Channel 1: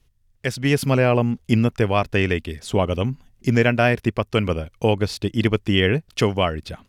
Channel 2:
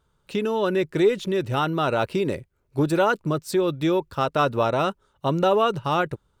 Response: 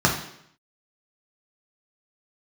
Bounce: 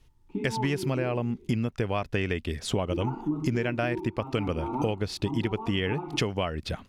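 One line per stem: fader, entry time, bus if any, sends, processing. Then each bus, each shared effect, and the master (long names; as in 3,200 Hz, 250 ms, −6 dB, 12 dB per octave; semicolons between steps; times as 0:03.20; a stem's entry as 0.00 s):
+2.0 dB, 0.00 s, no send, high-shelf EQ 10,000 Hz −7 dB
−6.0 dB, 0.00 s, muted 0:01.24–0:02.90, send −7 dB, formant filter u; high-shelf EQ 2,500 Hz −10 dB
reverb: on, RT60 0.70 s, pre-delay 3 ms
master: downward compressor 10 to 1, threshold −24 dBFS, peak gain reduction 15 dB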